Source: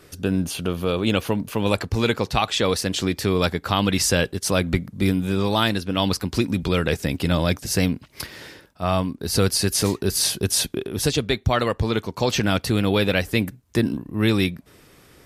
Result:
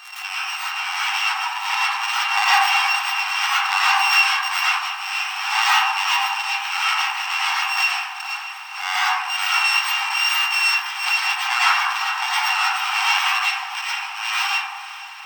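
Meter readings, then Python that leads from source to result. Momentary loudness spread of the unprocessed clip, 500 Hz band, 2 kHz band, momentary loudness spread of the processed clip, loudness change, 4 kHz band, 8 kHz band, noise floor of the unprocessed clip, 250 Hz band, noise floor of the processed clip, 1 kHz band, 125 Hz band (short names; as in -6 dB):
5 LU, under -25 dB, +11.0 dB, 9 LU, +3.5 dB, +5.5 dB, -3.0 dB, -53 dBFS, under -40 dB, -34 dBFS, +9.0 dB, under -40 dB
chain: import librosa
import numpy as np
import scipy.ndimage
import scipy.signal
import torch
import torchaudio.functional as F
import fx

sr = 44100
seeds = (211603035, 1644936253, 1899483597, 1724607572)

p1 = np.r_[np.sort(x[:len(x) // 16 * 16].reshape(-1, 16), axis=1).ravel(), x[len(x) // 16 * 16:]]
p2 = fx.schmitt(p1, sr, flips_db=-28.5)
p3 = p1 + F.gain(torch.from_numpy(p2), -10.0).numpy()
p4 = fx.wow_flutter(p3, sr, seeds[0], rate_hz=2.1, depth_cents=18.0)
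p5 = np.convolve(p4, np.full(4, 1.0 / 4))[:len(p4)]
p6 = fx.dmg_crackle(p5, sr, seeds[1], per_s=110.0, level_db=-42.0)
p7 = fx.brickwall_highpass(p6, sr, low_hz=740.0)
p8 = fx.echo_diffused(p7, sr, ms=503, feedback_pct=69, wet_db=-15)
p9 = fx.rev_freeverb(p8, sr, rt60_s=1.4, hf_ratio=0.25, predelay_ms=70, drr_db=-8.5)
y = fx.pre_swell(p9, sr, db_per_s=62.0)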